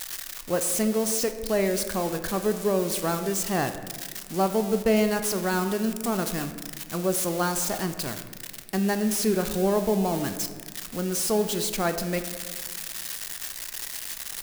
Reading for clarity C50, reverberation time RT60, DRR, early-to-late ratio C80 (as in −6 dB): 10.0 dB, 1.7 s, 7.5 dB, 11.0 dB